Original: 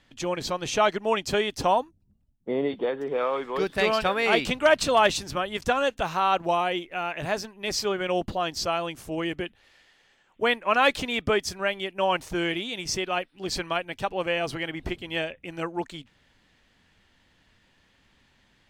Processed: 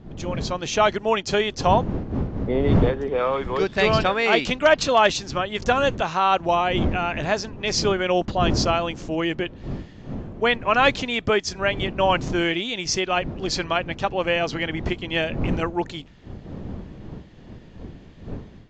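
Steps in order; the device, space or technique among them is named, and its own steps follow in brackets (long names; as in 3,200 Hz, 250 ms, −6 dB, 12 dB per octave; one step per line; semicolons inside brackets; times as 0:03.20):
smartphone video outdoors (wind on the microphone −34 dBFS; automatic gain control gain up to 9 dB; level −3.5 dB; AAC 64 kbit/s 16,000 Hz)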